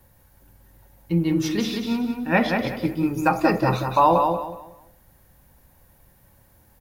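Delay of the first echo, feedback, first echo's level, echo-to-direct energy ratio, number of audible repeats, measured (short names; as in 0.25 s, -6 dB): 0.185 s, 28%, -5.0 dB, -4.5 dB, 3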